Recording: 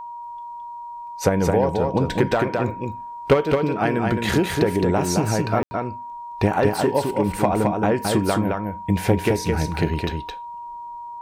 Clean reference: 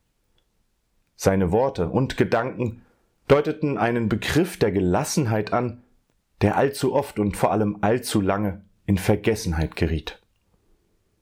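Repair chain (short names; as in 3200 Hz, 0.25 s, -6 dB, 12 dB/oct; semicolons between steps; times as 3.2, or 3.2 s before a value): notch 950 Hz, Q 30; room tone fill 5.63–5.71; inverse comb 0.216 s -4 dB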